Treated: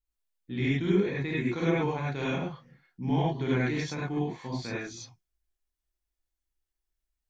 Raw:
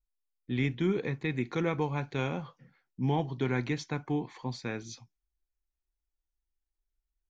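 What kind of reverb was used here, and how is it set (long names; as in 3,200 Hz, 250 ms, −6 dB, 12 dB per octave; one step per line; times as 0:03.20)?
reverb whose tail is shaped and stops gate 120 ms rising, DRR −6.5 dB
level −4.5 dB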